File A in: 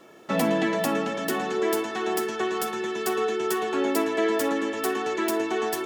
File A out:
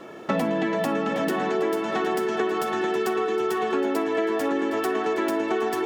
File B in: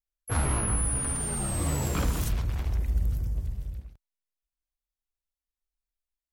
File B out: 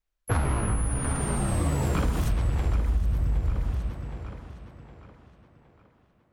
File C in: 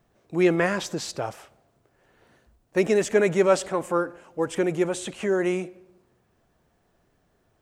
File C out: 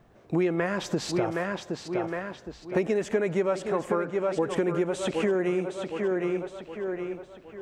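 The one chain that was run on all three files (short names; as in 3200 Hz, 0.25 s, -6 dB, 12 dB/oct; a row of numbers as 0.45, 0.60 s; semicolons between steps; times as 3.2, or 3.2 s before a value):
on a send: tape echo 0.765 s, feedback 46%, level -9.5 dB, low-pass 5700 Hz; on the sum: compressor 8:1, threshold -31 dBFS; high shelf 4300 Hz -11.5 dB; normalise peaks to -12 dBFS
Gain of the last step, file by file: +10.0, +10.0, +8.5 dB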